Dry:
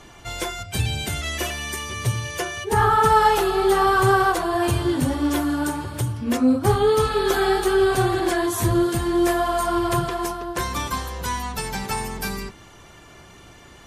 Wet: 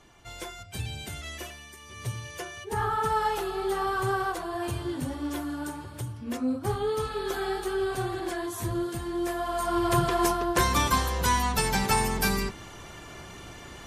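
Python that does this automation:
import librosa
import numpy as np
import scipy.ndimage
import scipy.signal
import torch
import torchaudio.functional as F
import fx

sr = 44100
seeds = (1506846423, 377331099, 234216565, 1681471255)

y = fx.gain(x, sr, db=fx.line((1.33, -11.0), (1.77, -19.0), (2.05, -10.5), (9.32, -10.5), (10.27, 2.5)))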